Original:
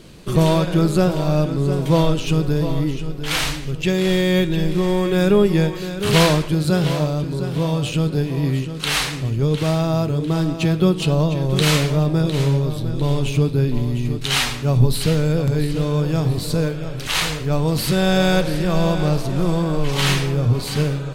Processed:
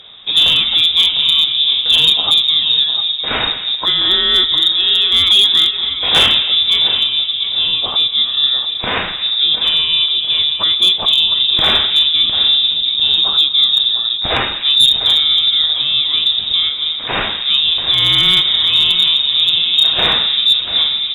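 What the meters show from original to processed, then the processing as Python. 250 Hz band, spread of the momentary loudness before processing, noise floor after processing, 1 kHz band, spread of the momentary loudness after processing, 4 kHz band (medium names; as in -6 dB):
-15.5 dB, 6 LU, -22 dBFS, +0.5 dB, 6 LU, +19.5 dB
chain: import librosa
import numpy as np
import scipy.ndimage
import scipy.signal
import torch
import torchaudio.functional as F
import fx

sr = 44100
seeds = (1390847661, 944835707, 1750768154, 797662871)

y = fx.freq_invert(x, sr, carrier_hz=3700)
y = fx.echo_wet_highpass(y, sr, ms=246, feedback_pct=36, hz=2800.0, wet_db=-8.0)
y = fx.clip_asym(y, sr, top_db=-8.0, bottom_db=-6.0)
y = y * 10.0 ** (3.5 / 20.0)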